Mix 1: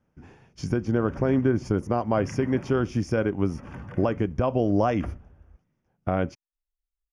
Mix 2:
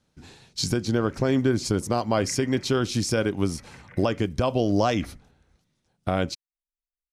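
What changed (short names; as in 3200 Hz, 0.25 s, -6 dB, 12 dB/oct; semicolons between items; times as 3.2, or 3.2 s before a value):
background: add ladder low-pass 2300 Hz, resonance 70%; master: remove running mean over 11 samples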